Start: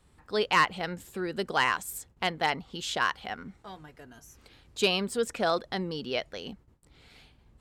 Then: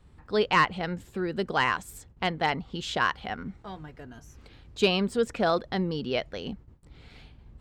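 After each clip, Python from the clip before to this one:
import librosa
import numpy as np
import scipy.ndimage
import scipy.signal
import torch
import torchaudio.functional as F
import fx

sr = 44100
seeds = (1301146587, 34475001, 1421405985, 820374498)

y = fx.low_shelf(x, sr, hz=240.0, db=7.5)
y = fx.rider(y, sr, range_db=3, speed_s=2.0)
y = fx.peak_eq(y, sr, hz=12000.0, db=-11.0, octaves=1.4)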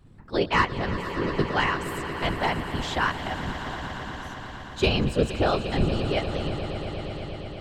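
y = fx.octave_divider(x, sr, octaves=1, level_db=3.0)
y = fx.whisperise(y, sr, seeds[0])
y = fx.echo_swell(y, sr, ms=117, loudest=5, wet_db=-14.5)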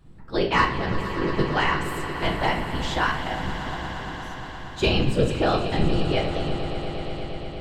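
y = fx.room_shoebox(x, sr, seeds[1], volume_m3=160.0, walls='mixed', distance_m=0.65)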